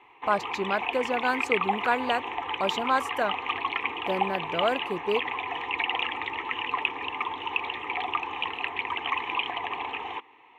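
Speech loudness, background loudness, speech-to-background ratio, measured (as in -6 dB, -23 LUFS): -29.0 LUFS, -30.0 LUFS, 1.0 dB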